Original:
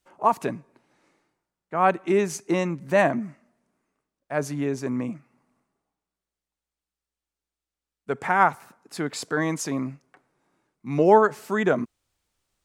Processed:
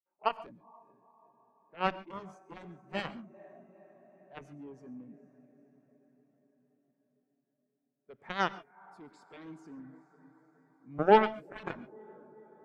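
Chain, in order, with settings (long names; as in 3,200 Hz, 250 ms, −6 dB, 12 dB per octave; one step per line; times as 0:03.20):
de-essing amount 70%
feedback delay with all-pass diffusion 464 ms, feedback 70%, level −12 dB
harmonic generator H 7 −13 dB, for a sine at −3.5 dBFS
reverb whose tail is shaped and stops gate 160 ms rising, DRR 11.5 dB
every bin expanded away from the loudest bin 1.5 to 1
level −5.5 dB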